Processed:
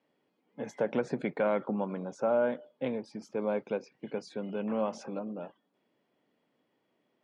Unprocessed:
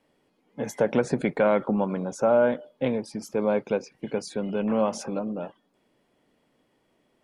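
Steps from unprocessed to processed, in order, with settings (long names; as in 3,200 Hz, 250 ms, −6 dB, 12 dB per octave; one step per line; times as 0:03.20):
band-pass filter 140–4,800 Hz
level −7 dB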